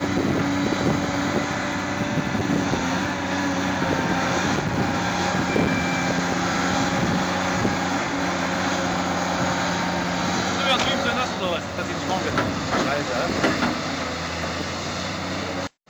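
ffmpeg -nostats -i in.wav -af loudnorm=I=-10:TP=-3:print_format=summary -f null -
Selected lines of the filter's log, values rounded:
Input Integrated:    -23.5 LUFS
Input True Peak:     -10.9 dBTP
Input LRA:             3.2 LU
Input Threshold:     -33.5 LUFS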